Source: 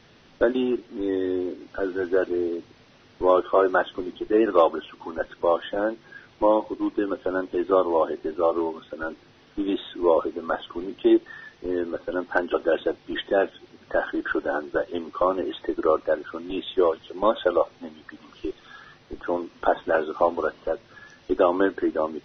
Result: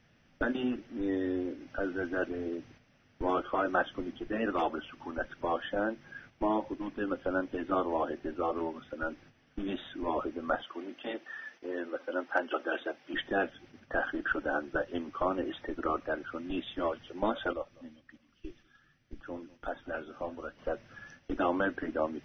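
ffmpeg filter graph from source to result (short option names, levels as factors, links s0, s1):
-filter_complex "[0:a]asettb=1/sr,asplit=3[s0][s1][s2];[s0]atrim=end=10.634[s3];[s1]atrim=start=10.63:end=13.14,asetpts=PTS-STARTPTS,afade=t=in:d=0.004:c=qsin,afade=t=out:st=2.506:d=0.004:c=qsin,highpass=370,flanger=delay=1:depth=2.9:regen=-61:speed=1.7:shape=triangular,acontrast=23[s4];[s2]atrim=start=13.136[s5];[s3][s4]acrossfade=d=0.004:c1=hsin:c2=qsin[s6];[s6][s5]acrossfade=d=0.004:c1=qsin:c2=hsin,asettb=1/sr,asplit=3[s7][s8][s9];[s7]atrim=end=17.534[s10];[s8]atrim=start=17.53:end=20.59,asetpts=PTS-STARTPTS,afade=t=in:d=0.004:c=qsin,afade=t=out:st=3.056:d=0.004:c=qsin,equalizer=f=760:t=o:w=2.4:g=-8.5,flanger=delay=2.9:depth=6.6:regen=-63:speed=1.3:shape=sinusoidal,aecho=1:1:196|392|588:0.0794|0.0357|0.0161,atrim=end_sample=134946[s11];[s9]atrim=start=20.586[s12];[s10][s11]acrossfade=d=0.004:c1=hsin:c2=qsin[s13];[s13][s12]acrossfade=d=0.004:c1=qsin:c2=hsin,afftfilt=real='re*lt(hypot(re,im),0.708)':imag='im*lt(hypot(re,im),0.708)':win_size=1024:overlap=0.75,agate=range=0.398:threshold=0.00316:ratio=16:detection=peak,equalizer=f=400:t=o:w=0.67:g=-10,equalizer=f=1000:t=o:w=0.67:g=-8,equalizer=f=4000:t=o:w=0.67:g=-12"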